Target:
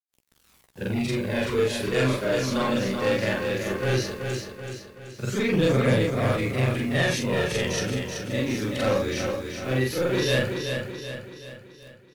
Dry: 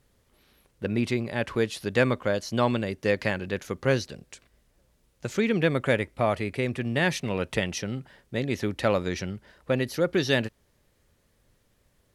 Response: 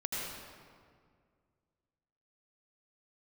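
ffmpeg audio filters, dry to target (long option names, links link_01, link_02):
-filter_complex "[0:a]afftfilt=real='re':imag='-im':win_size=4096:overlap=0.75,acrossover=split=130|4100[link_01][link_02][link_03];[link_02]asoftclip=type=tanh:threshold=-28.5dB[link_04];[link_01][link_04][link_03]amix=inputs=3:normalize=0,acrusher=bits=9:mix=0:aa=0.000001,aphaser=in_gain=1:out_gain=1:delay=4:decay=0.38:speed=0.17:type=triangular,asplit=2[link_05][link_06];[link_06]adelay=16,volume=-8.5dB[link_07];[link_05][link_07]amix=inputs=2:normalize=0,asplit=2[link_08][link_09];[link_09]aecho=0:1:380|760|1140|1520|1900|2280:0.501|0.246|0.12|0.059|0.0289|0.0142[link_10];[link_08][link_10]amix=inputs=2:normalize=0,volume=7dB" -ar 48000 -c:a wmav2 -b:a 128k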